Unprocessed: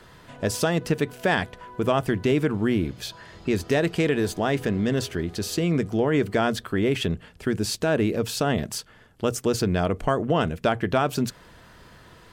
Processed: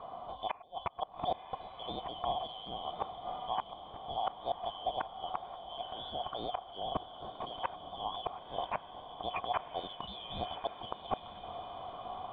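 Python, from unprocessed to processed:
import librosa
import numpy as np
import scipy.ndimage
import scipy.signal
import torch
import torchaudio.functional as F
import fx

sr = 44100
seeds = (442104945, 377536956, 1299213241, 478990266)

p1 = fx.band_shuffle(x, sr, order='3412')
p2 = fx.low_shelf(p1, sr, hz=210.0, db=9.0)
p3 = fx.over_compress(p2, sr, threshold_db=-29.0, ratio=-0.5)
p4 = p2 + (p3 * librosa.db_to_amplitude(1.5))
p5 = fx.formant_cascade(p4, sr, vowel='a')
p6 = fx.gate_flip(p5, sr, shuts_db=-39.0, range_db=-28)
p7 = fx.echo_diffused(p6, sr, ms=1041, feedback_pct=53, wet_db=-10.0)
y = p7 * librosa.db_to_amplitude(17.5)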